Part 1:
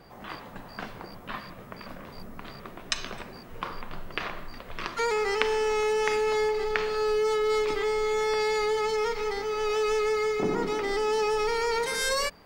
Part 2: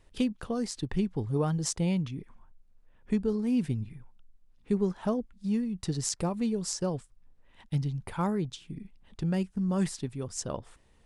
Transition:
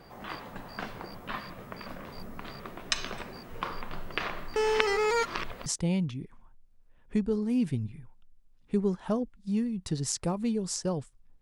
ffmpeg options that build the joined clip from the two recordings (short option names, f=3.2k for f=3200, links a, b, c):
-filter_complex "[0:a]apad=whole_dur=11.41,atrim=end=11.41,asplit=2[a][b];[a]atrim=end=4.562[c];[b]atrim=start=4.558:end=5.662,asetpts=PTS-STARTPTS,areverse[d];[1:a]atrim=start=1.628:end=7.38[e];[c][d]acrossfade=d=0.004:c1=hsin:c2=hsin[f];[f][e]acrossfade=d=0.004:c1=hsin:c2=hsin"